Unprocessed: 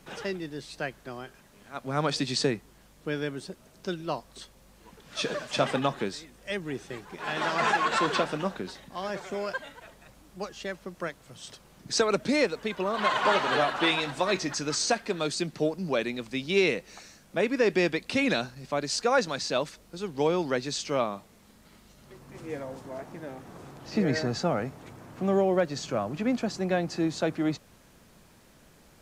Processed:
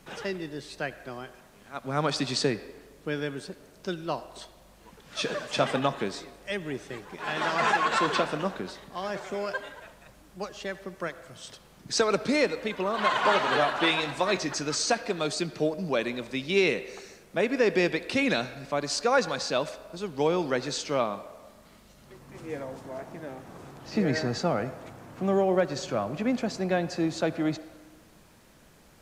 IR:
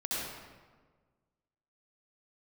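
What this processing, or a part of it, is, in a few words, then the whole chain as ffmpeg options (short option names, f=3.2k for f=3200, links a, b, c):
filtered reverb send: -filter_complex "[0:a]asplit=2[a][b];[b]highpass=400,lowpass=3.8k[c];[1:a]atrim=start_sample=2205[d];[c][d]afir=irnorm=-1:irlink=0,volume=-17.5dB[e];[a][e]amix=inputs=2:normalize=0"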